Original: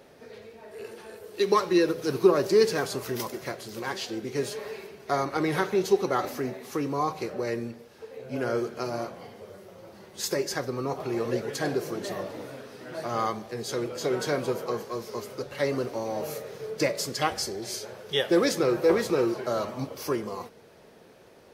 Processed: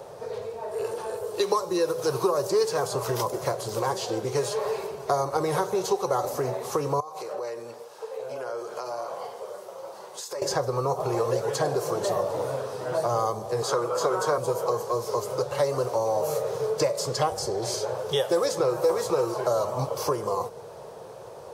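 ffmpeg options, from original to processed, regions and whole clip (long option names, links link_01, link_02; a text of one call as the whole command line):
ffmpeg -i in.wav -filter_complex "[0:a]asettb=1/sr,asplit=3[link_01][link_02][link_03];[link_01]atrim=end=7.004[link_04];[link_02]atrim=start=7:end=10.42,asetpts=PTS-STARTPTS,afade=type=in:duration=0.004:curve=qsin,afade=type=out:start_time=3.416:duration=0.004:curve=qsin,lowshelf=frequency=460:gain=-11,acompressor=threshold=-40dB:ratio=12:attack=3.2:release=140:knee=1:detection=peak,highpass=210[link_05];[link_03]atrim=start=10.416[link_06];[link_04][link_05]acrossfade=duration=0.004:curve1=hsin:curve2=qsin[link_07];[link_07][link_06]acrossfade=duration=0.004:curve1=qsin:curve2=hsin,asettb=1/sr,asplit=3[link_08][link_09][link_10];[link_08]atrim=end=13.624[link_11];[link_09]atrim=start=13.62:end=14.38,asetpts=PTS-STARTPTS,afade=type=in:duration=0.004:curve=qsin,afade=type=out:start_time=0.756:duration=0.004:curve=qsin,highpass=160,equalizer=frequency=1200:width_type=o:width=0.75:gain=13[link_12];[link_10]atrim=start=14.376[link_13];[link_11][link_12]acrossfade=duration=0.004:curve1=hsin:curve2=qsin[link_14];[link_14][link_13]acrossfade=duration=0.004:curve1=qsin:curve2=hsin,equalizer=frequency=125:width_type=o:width=1:gain=10,equalizer=frequency=250:width_type=o:width=1:gain=-11,equalizer=frequency=500:width_type=o:width=1:gain=10,equalizer=frequency=1000:width_type=o:width=1:gain=11,equalizer=frequency=2000:width_type=o:width=1:gain=-7,equalizer=frequency=8000:width_type=o:width=1:gain=7,acrossover=split=650|5600[link_15][link_16][link_17];[link_15]acompressor=threshold=-31dB:ratio=4[link_18];[link_16]acompressor=threshold=-34dB:ratio=4[link_19];[link_17]acompressor=threshold=-43dB:ratio=4[link_20];[link_18][link_19][link_20]amix=inputs=3:normalize=0,volume=4dB" out.wav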